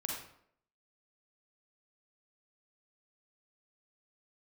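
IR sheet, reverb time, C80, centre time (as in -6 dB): 0.70 s, 5.0 dB, 49 ms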